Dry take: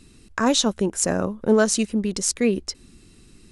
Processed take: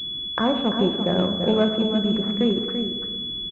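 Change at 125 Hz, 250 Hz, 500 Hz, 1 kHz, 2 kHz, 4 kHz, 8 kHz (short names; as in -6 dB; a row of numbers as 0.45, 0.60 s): +3.0 dB, +1.0 dB, -0.5 dB, 0.0 dB, -5.0 dB, +6.0 dB, under -30 dB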